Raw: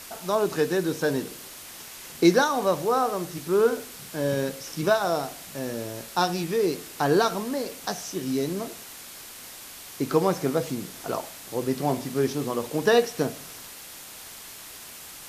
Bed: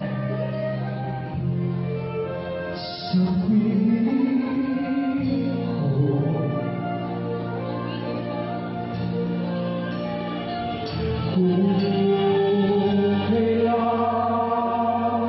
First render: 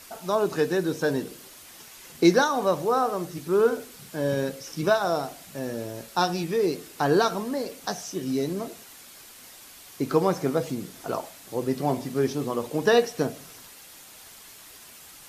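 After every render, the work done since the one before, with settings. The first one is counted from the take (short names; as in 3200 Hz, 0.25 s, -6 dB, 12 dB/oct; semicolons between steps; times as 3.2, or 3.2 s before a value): denoiser 6 dB, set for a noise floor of -43 dBFS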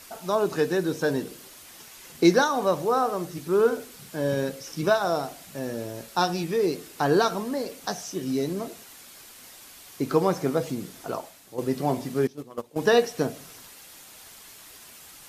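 10.92–11.58 fade out, to -8.5 dB; 12.27–12.78 gate -26 dBFS, range -18 dB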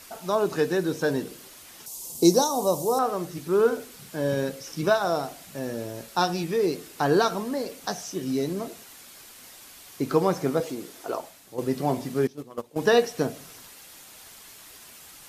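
1.86–2.99 EQ curve 980 Hz 0 dB, 1600 Hz -21 dB, 4800 Hz +4 dB, 7500 Hz +11 dB; 10.6–11.2 resonant low shelf 250 Hz -9 dB, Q 1.5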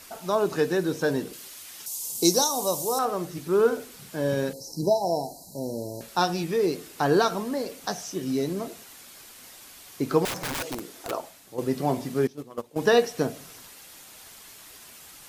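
1.33–3.05 tilt shelf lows -5 dB, about 1400 Hz; 4.53–6.01 brick-wall FIR band-stop 1000–3900 Hz; 10.25–11.11 wrapped overs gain 25.5 dB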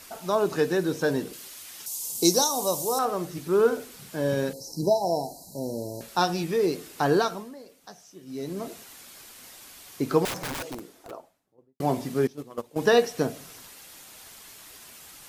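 7.09–8.72 dip -15.5 dB, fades 0.46 s linear; 10.17–11.8 studio fade out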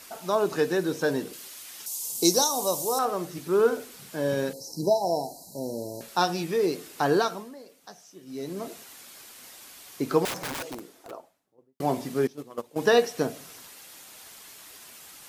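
low shelf 110 Hz -9.5 dB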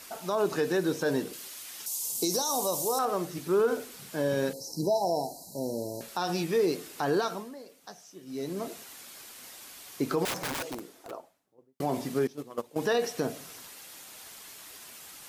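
limiter -18 dBFS, peak gain reduction 11.5 dB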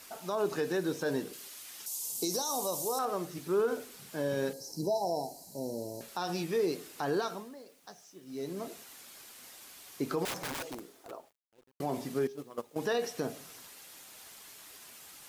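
resonator 410 Hz, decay 0.58 s, mix 40%; bit-crush 11-bit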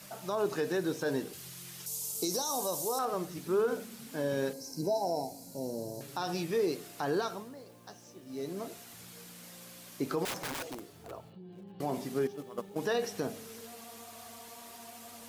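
add bed -30 dB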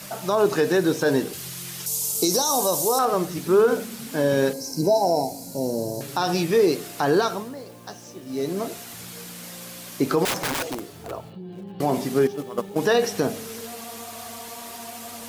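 gain +11.5 dB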